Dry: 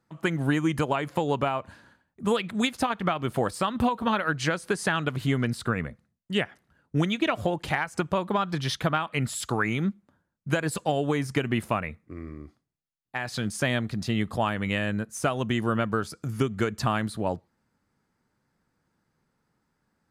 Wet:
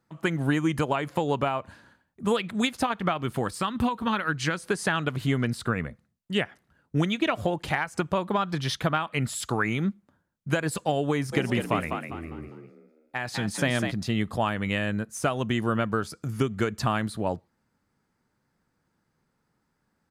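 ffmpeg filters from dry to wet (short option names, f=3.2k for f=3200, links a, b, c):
-filter_complex "[0:a]asettb=1/sr,asplit=3[a][b][c];[a]atrim=end=3.244[d];[b]atrim=start=3.24:end=4.58,asetpts=PTS-STARTPTS,afade=t=in:d=0.004:c=qsin,afade=t=out:st=1.336:d=0.004:c=qsin,equalizer=f=610:t=o:w=0.77:g=-7[e];[c]atrim=start=4.576[f];[d][e]acrossfade=d=0.004:c1=hsin:c2=qsin[g];[g][f]acrossfade=d=0.004:c1=qsin:c2=hsin,asplit=3[h][i][j];[h]afade=t=out:st=11.32:d=0.02[k];[i]asplit=5[l][m][n][o][p];[m]adelay=201,afreqshift=55,volume=-5.5dB[q];[n]adelay=402,afreqshift=110,volume=-14.4dB[r];[o]adelay=603,afreqshift=165,volume=-23.2dB[s];[p]adelay=804,afreqshift=220,volume=-32.1dB[t];[l][q][r][s][t]amix=inputs=5:normalize=0,afade=t=in:st=11.32:d=0.02,afade=t=out:st=13.9:d=0.02[u];[j]afade=t=in:st=13.9:d=0.02[v];[k][u][v]amix=inputs=3:normalize=0"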